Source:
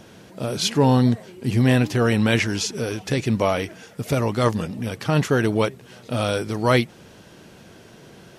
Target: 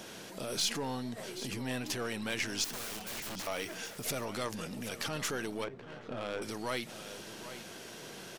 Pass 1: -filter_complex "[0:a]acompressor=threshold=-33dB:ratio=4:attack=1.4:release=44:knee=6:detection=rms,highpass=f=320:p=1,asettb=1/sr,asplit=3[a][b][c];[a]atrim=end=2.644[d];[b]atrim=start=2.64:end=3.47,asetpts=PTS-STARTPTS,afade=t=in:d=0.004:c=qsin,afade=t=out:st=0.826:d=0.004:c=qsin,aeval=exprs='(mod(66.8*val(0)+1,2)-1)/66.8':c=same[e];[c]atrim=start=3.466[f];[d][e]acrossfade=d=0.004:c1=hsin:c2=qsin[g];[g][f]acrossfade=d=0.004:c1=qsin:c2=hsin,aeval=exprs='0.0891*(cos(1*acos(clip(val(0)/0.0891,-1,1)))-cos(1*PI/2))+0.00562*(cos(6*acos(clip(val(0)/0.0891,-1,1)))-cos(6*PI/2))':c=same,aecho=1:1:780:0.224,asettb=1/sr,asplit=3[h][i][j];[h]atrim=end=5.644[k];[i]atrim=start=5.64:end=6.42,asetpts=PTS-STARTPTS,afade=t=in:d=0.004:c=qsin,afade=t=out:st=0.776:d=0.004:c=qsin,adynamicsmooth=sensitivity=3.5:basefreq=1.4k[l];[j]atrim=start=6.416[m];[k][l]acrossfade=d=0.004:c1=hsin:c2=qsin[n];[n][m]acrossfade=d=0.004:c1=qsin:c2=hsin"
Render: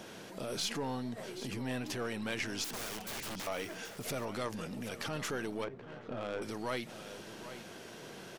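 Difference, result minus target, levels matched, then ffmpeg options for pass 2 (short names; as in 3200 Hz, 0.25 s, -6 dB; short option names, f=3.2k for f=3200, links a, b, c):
8000 Hz band -3.0 dB
-filter_complex "[0:a]acompressor=threshold=-33dB:ratio=4:attack=1.4:release=44:knee=6:detection=rms,highpass=f=320:p=1,highshelf=f=2.9k:g=6.5,asettb=1/sr,asplit=3[a][b][c];[a]atrim=end=2.644[d];[b]atrim=start=2.64:end=3.47,asetpts=PTS-STARTPTS,afade=t=in:d=0.004:c=qsin,afade=t=out:st=0.826:d=0.004:c=qsin,aeval=exprs='(mod(66.8*val(0)+1,2)-1)/66.8':c=same[e];[c]atrim=start=3.466[f];[d][e]acrossfade=d=0.004:c1=hsin:c2=qsin[g];[g][f]acrossfade=d=0.004:c1=qsin:c2=hsin,aeval=exprs='0.0891*(cos(1*acos(clip(val(0)/0.0891,-1,1)))-cos(1*PI/2))+0.00562*(cos(6*acos(clip(val(0)/0.0891,-1,1)))-cos(6*PI/2))':c=same,aecho=1:1:780:0.224,asettb=1/sr,asplit=3[h][i][j];[h]atrim=end=5.644[k];[i]atrim=start=5.64:end=6.42,asetpts=PTS-STARTPTS,afade=t=in:d=0.004:c=qsin,afade=t=out:st=0.776:d=0.004:c=qsin,adynamicsmooth=sensitivity=3.5:basefreq=1.4k[l];[j]atrim=start=6.416[m];[k][l]acrossfade=d=0.004:c1=hsin:c2=qsin[n];[n][m]acrossfade=d=0.004:c1=qsin:c2=hsin"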